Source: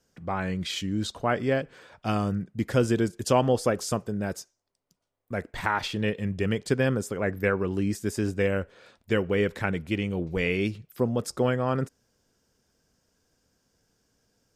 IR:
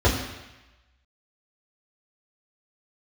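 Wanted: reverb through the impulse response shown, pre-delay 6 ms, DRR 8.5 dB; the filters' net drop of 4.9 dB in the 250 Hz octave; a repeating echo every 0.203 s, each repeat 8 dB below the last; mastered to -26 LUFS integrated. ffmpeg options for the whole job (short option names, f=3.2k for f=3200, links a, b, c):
-filter_complex "[0:a]equalizer=f=250:t=o:g=-6.5,aecho=1:1:203|406|609|812|1015:0.398|0.159|0.0637|0.0255|0.0102,asplit=2[a][b];[1:a]atrim=start_sample=2205,adelay=6[c];[b][c]afir=irnorm=-1:irlink=0,volume=-26.5dB[d];[a][d]amix=inputs=2:normalize=0,volume=0.5dB"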